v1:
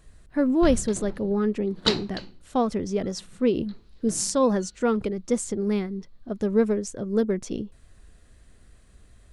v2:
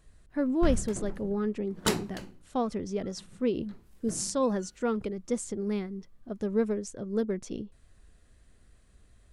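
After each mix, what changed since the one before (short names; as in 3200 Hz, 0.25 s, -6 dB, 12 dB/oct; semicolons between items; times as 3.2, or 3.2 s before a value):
speech -6.0 dB; background: remove synth low-pass 4200 Hz, resonance Q 4.8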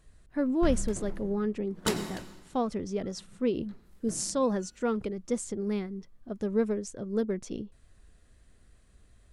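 background -5.0 dB; reverb: on, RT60 1.2 s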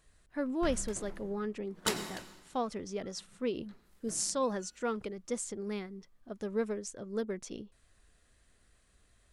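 master: add low shelf 470 Hz -9.5 dB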